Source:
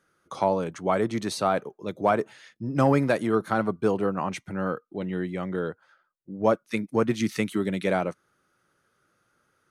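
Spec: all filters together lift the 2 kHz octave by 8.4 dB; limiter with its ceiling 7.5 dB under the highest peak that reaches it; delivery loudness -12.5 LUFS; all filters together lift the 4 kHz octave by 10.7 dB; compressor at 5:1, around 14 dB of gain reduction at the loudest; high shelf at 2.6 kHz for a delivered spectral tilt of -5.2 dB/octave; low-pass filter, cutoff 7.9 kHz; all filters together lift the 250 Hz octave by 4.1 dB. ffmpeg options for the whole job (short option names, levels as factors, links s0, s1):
-af "lowpass=7900,equalizer=f=250:t=o:g=5,equalizer=f=2000:t=o:g=7.5,highshelf=f=2600:g=3.5,equalizer=f=4000:t=o:g=8,acompressor=threshold=0.0316:ratio=5,volume=14.1,alimiter=limit=1:level=0:latency=1"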